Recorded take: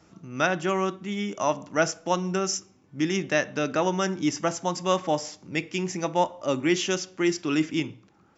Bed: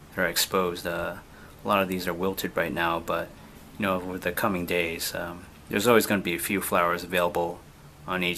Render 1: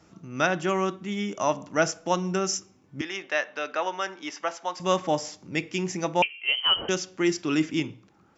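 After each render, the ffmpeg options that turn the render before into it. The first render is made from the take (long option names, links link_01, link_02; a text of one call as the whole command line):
ffmpeg -i in.wav -filter_complex "[0:a]asettb=1/sr,asplit=3[link_01][link_02][link_03];[link_01]atrim=end=3.014[link_04];[link_02]atrim=start=3.01:end=4.8,asetpts=PTS-STARTPTS,afade=type=in:duration=0.004:curve=qsin,afade=type=out:start_time=1.786:duration=0.004:curve=qsin,highpass=660,lowpass=4000[link_05];[link_03]atrim=start=4.796[link_06];[link_04][link_05]acrossfade=duration=0.004:curve1=hsin:curve2=qsin[link_07];[link_07][link_06]acrossfade=duration=0.004:curve1=qsin:curve2=hsin,asettb=1/sr,asplit=3[link_08][link_09][link_10];[link_08]atrim=end=6.224[link_11];[link_09]atrim=start=6.22:end=6.89,asetpts=PTS-STARTPTS,afade=type=in:duration=0.004:curve=qsin,afade=type=out:start_time=0.666:duration=0.004:curve=qsin,lowpass=frequency=2800:width_type=q:width=0.5098,lowpass=frequency=2800:width_type=q:width=0.6013,lowpass=frequency=2800:width_type=q:width=0.9,lowpass=frequency=2800:width_type=q:width=2.563,afreqshift=-3300[link_12];[link_10]atrim=start=6.886[link_13];[link_11][link_12]acrossfade=duration=0.004:curve1=hsin:curve2=qsin[link_14];[link_14][link_13]acrossfade=duration=0.004:curve1=qsin:curve2=hsin" out.wav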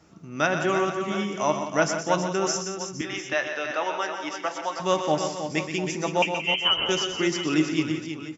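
ffmpeg -i in.wav -filter_complex "[0:a]asplit=2[link_01][link_02];[link_02]adelay=13,volume=-13dB[link_03];[link_01][link_03]amix=inputs=2:normalize=0,aecho=1:1:123|174|320|462|699:0.355|0.266|0.398|0.178|0.2" out.wav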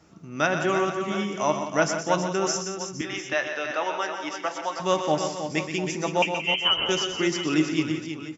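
ffmpeg -i in.wav -af anull out.wav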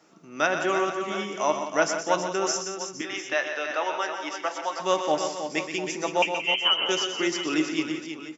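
ffmpeg -i in.wav -af "highpass=300" out.wav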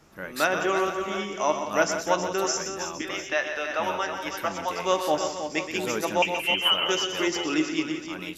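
ffmpeg -i in.wav -i bed.wav -filter_complex "[1:a]volume=-11.5dB[link_01];[0:a][link_01]amix=inputs=2:normalize=0" out.wav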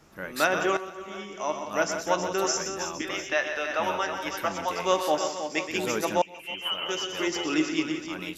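ffmpeg -i in.wav -filter_complex "[0:a]asettb=1/sr,asplit=3[link_01][link_02][link_03];[link_01]atrim=end=5.034[link_04];[link_02]atrim=start=5.03:end=5.69,asetpts=PTS-STARTPTS,afade=type=in:duration=0.004:curve=qsin,afade=type=out:start_time=0.656:duration=0.004:curve=qsin,highpass=frequency=220:poles=1[link_05];[link_03]atrim=start=5.686[link_06];[link_04][link_05]acrossfade=duration=0.004:curve1=hsin:curve2=qsin[link_07];[link_07][link_06]acrossfade=duration=0.004:curve1=qsin:curve2=hsin,asplit=3[link_08][link_09][link_10];[link_08]atrim=end=0.77,asetpts=PTS-STARTPTS,afade=type=out:start_time=0.766:duration=0.004:curve=hsin:silence=0.211349[link_11];[link_09]atrim=start=0.77:end=6.22,asetpts=PTS-STARTPTS,afade=type=in:duration=1.71:silence=0.211349,afade=type=out:start_time=5.446:duration=0.004:curve=hsin:silence=0.0794328[link_12];[link_10]atrim=start=6.22,asetpts=PTS-STARTPTS,afade=type=in:duration=1.42:silence=0.0794328[link_13];[link_11][link_12][link_13]concat=n=3:v=0:a=1" out.wav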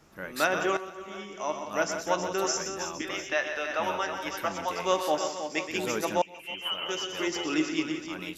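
ffmpeg -i in.wav -af "volume=-2dB" out.wav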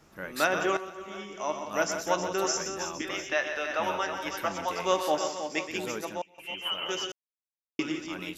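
ffmpeg -i in.wav -filter_complex "[0:a]asettb=1/sr,asplit=3[link_01][link_02][link_03];[link_01]atrim=end=1.744[link_04];[link_02]atrim=start=1.74:end=2.2,asetpts=PTS-STARTPTS,afade=type=in:duration=0.004:curve=qsin,afade=type=out:start_time=0.456:duration=0.004:curve=qsin,highshelf=frequency=10000:gain=8[link_05];[link_03]atrim=start=2.196[link_06];[link_04][link_05]acrossfade=duration=0.004:curve1=hsin:curve2=qsin[link_07];[link_07][link_06]acrossfade=duration=0.004:curve1=qsin:curve2=hsin,asplit=4[link_08][link_09][link_10][link_11];[link_08]atrim=end=6.38,asetpts=PTS-STARTPTS,afade=type=out:start_time=5.53:duration=0.85:silence=0.177828[link_12];[link_09]atrim=start=6.38:end=7.12,asetpts=PTS-STARTPTS,afade=type=in:duration=0.004:curve=hsin:silence=0.177828,afade=type=out:start_time=0.736:duration=0.004:curve=hsin[link_13];[link_10]atrim=start=7.12:end=7.79,asetpts=PTS-STARTPTS,volume=0[link_14];[link_11]atrim=start=7.79,asetpts=PTS-STARTPTS,afade=type=in:duration=0.004:curve=hsin[link_15];[link_12][link_13][link_14][link_15]concat=n=4:v=0:a=1" out.wav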